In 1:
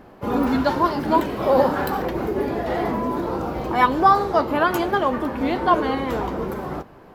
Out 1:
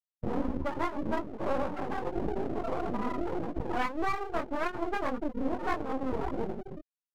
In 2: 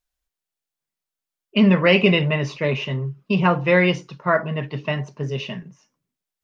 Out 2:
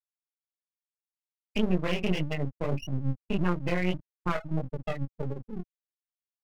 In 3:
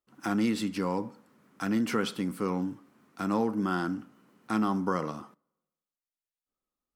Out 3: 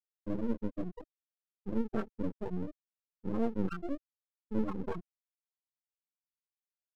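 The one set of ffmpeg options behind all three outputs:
-filter_complex "[0:a]afftfilt=real='re*gte(hypot(re,im),0.251)':imag='im*gte(hypot(re,im),0.251)':win_size=1024:overlap=0.75,anlmdn=0.0631,acrossover=split=120[link_01][link_02];[link_02]acompressor=threshold=-31dB:ratio=5[link_03];[link_01][link_03]amix=inputs=2:normalize=0,flanger=delay=17:depth=6.6:speed=1.7,aeval=exprs='max(val(0),0)':channel_layout=same,volume=7.5dB"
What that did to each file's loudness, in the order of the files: −12.5, −11.5, −7.0 LU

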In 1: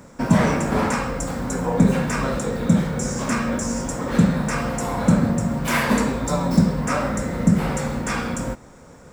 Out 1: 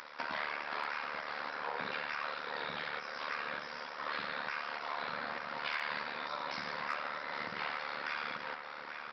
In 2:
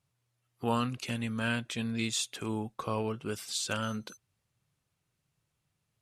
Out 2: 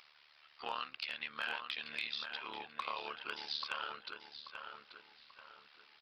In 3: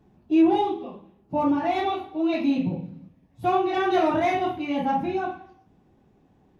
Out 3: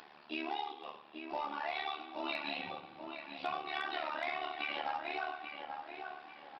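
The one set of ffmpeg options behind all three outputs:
-filter_complex "[0:a]highpass=1300,acompressor=threshold=-42dB:ratio=5,tremolo=f=74:d=0.824,acompressor=mode=upward:threshold=-52dB:ratio=2.5,aresample=11025,acrusher=bits=5:mode=log:mix=0:aa=0.000001,aresample=44100,asoftclip=type=hard:threshold=-33.5dB,asplit=2[link_01][link_02];[link_02]adelay=836,lowpass=frequency=2400:poles=1,volume=-5.5dB,asplit=2[link_03][link_04];[link_04]adelay=836,lowpass=frequency=2400:poles=1,volume=0.41,asplit=2[link_05][link_06];[link_06]adelay=836,lowpass=frequency=2400:poles=1,volume=0.41,asplit=2[link_07][link_08];[link_08]adelay=836,lowpass=frequency=2400:poles=1,volume=0.41,asplit=2[link_09][link_10];[link_10]adelay=836,lowpass=frequency=2400:poles=1,volume=0.41[link_11];[link_01][link_03][link_05][link_07][link_09][link_11]amix=inputs=6:normalize=0,volume=8.5dB"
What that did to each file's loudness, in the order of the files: −17.0, −8.0, −15.5 LU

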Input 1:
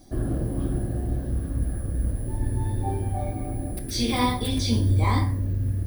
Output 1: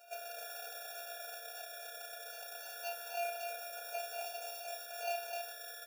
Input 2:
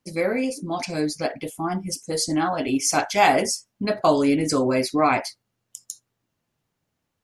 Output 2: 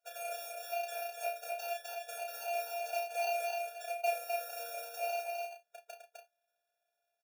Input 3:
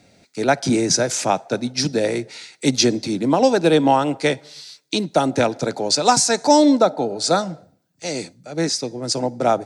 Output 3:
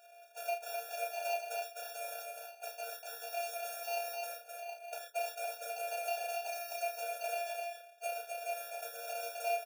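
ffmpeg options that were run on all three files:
-filter_complex "[0:a]highpass=frequency=170:width=0.5412,highpass=frequency=170:width=1.3066,equalizer=frequency=230:width=0.61:gain=14.5,asplit=2[link_01][link_02];[link_02]alimiter=limit=-4.5dB:level=0:latency=1,volume=-2dB[link_03];[link_01][link_03]amix=inputs=2:normalize=0,acompressor=threshold=-19dB:ratio=8,flanger=delay=6.5:depth=9.8:regen=-69:speed=0.35:shape=sinusoidal,acrusher=samples=25:mix=1:aa=0.000001,asoftclip=type=hard:threshold=-22.5dB,afftfilt=real='hypot(re,im)*cos(PI*b)':imag='0':win_size=512:overlap=0.75,asplit=2[link_04][link_05];[link_05]adelay=32,volume=-5dB[link_06];[link_04][link_06]amix=inputs=2:normalize=0,asplit=2[link_07][link_08];[link_08]aecho=0:1:256:0.668[link_09];[link_07][link_09]amix=inputs=2:normalize=0,afftfilt=real='re*eq(mod(floor(b*sr/1024/470),2),1)':imag='im*eq(mod(floor(b*sr/1024/470),2),1)':win_size=1024:overlap=0.75,volume=-1dB"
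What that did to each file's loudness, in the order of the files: −16.0, −15.0, −20.5 LU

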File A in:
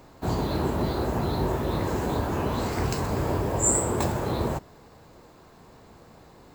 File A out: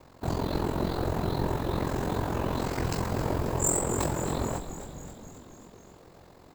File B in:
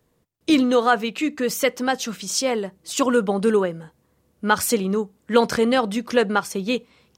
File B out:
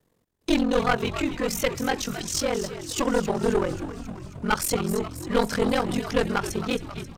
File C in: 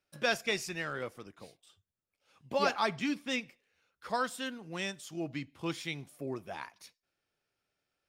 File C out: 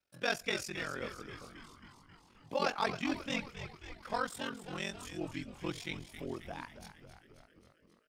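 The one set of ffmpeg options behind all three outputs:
-filter_complex "[0:a]aeval=exprs='val(0)*sin(2*PI*22*n/s)':channel_layout=same,aeval=exprs='clip(val(0),-1,0.0794)':channel_layout=same,asplit=9[link_01][link_02][link_03][link_04][link_05][link_06][link_07][link_08][link_09];[link_02]adelay=268,afreqshift=-96,volume=-11dB[link_10];[link_03]adelay=536,afreqshift=-192,volume=-14.7dB[link_11];[link_04]adelay=804,afreqshift=-288,volume=-18.5dB[link_12];[link_05]adelay=1072,afreqshift=-384,volume=-22.2dB[link_13];[link_06]adelay=1340,afreqshift=-480,volume=-26dB[link_14];[link_07]adelay=1608,afreqshift=-576,volume=-29.7dB[link_15];[link_08]adelay=1876,afreqshift=-672,volume=-33.5dB[link_16];[link_09]adelay=2144,afreqshift=-768,volume=-37.2dB[link_17];[link_01][link_10][link_11][link_12][link_13][link_14][link_15][link_16][link_17]amix=inputs=9:normalize=0"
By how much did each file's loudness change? 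−3.0, −4.5, −3.0 LU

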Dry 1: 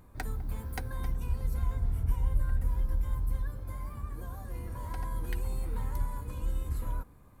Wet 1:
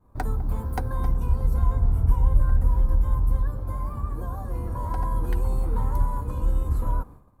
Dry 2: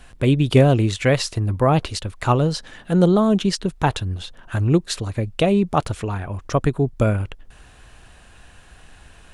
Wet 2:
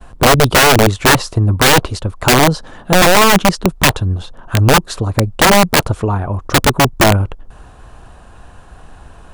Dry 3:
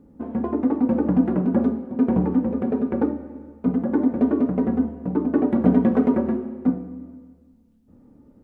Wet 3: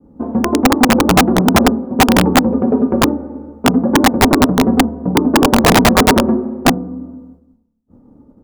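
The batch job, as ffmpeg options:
-af "highshelf=frequency=1500:width_type=q:width=1.5:gain=-8.5,aeval=exprs='(mod(3.98*val(0)+1,2)-1)/3.98':channel_layout=same,agate=range=-33dB:threshold=-47dB:ratio=3:detection=peak,volume=9dB"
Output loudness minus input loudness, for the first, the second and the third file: +9.0, +8.0, +9.0 LU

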